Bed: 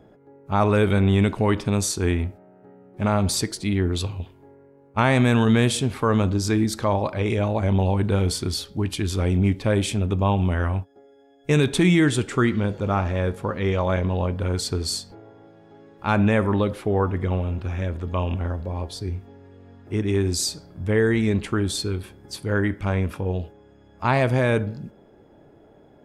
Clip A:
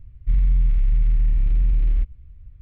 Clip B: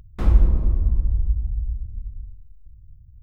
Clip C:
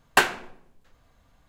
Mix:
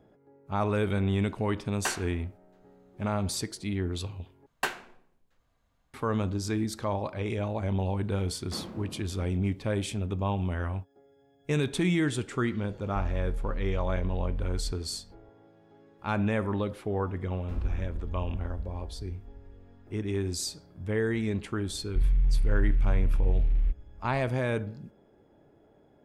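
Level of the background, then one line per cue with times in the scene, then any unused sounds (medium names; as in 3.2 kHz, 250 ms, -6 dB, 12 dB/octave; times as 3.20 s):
bed -8.5 dB
1.68 s: add C -10 dB + peak limiter -7.5 dBFS
4.46 s: replace with C -11.5 dB
8.33 s: add B -8 dB + high-pass 160 Hz 24 dB/octave
12.68 s: add A -14.5 dB
17.30 s: add B -16.5 dB
21.68 s: add A -6 dB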